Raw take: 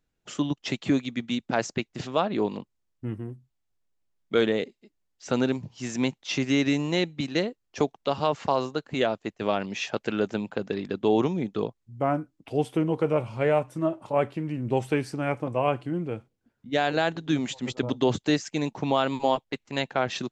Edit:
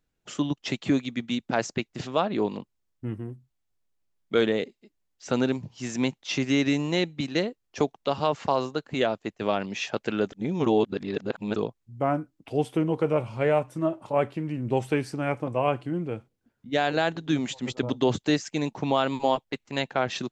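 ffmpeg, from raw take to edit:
ffmpeg -i in.wav -filter_complex "[0:a]asplit=3[link_01][link_02][link_03];[link_01]atrim=end=10.322[link_04];[link_02]atrim=start=10.318:end=11.562,asetpts=PTS-STARTPTS,areverse[link_05];[link_03]atrim=start=11.558[link_06];[link_04][link_05]acrossfade=duration=0.004:curve1=hsin:curve2=hsin[link_07];[link_07][link_06]acrossfade=duration=0.004:curve1=hsin:curve2=hsin" out.wav

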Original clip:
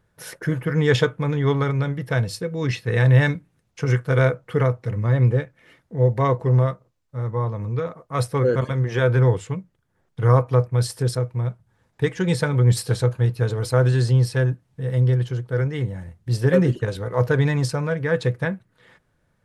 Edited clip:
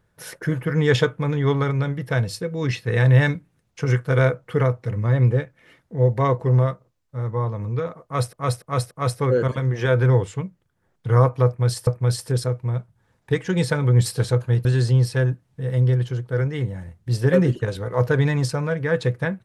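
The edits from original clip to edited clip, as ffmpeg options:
ffmpeg -i in.wav -filter_complex "[0:a]asplit=6[link_01][link_02][link_03][link_04][link_05][link_06];[link_01]atrim=end=8.332[link_07];[link_02]atrim=start=8.038:end=8.332[link_08];[link_03]atrim=start=8.038:end=8.332[link_09];[link_04]atrim=start=8.038:end=11.002[link_10];[link_05]atrim=start=10.578:end=13.362[link_11];[link_06]atrim=start=13.848[link_12];[link_07][link_08]acrossfade=duration=0.004:curve1=hsin:curve2=hsin[link_13];[link_13][link_09]acrossfade=duration=0.004:curve1=hsin:curve2=hsin[link_14];[link_14][link_10]acrossfade=duration=0.004:curve1=hsin:curve2=hsin[link_15];[link_15][link_11]acrossfade=duration=0.004:curve1=hsin:curve2=hsin[link_16];[link_16][link_12]acrossfade=duration=0.004:curve1=hsin:curve2=hsin" out.wav

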